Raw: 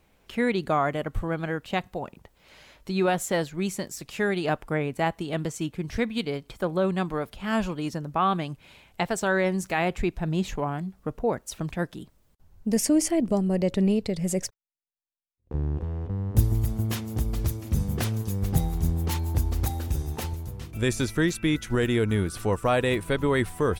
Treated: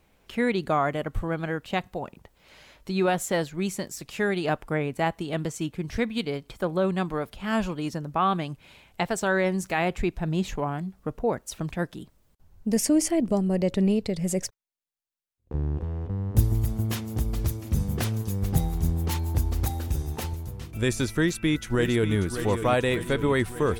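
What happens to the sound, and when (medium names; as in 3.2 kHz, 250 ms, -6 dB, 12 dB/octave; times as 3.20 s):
21.19–22.15 s: echo throw 590 ms, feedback 65%, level -9.5 dB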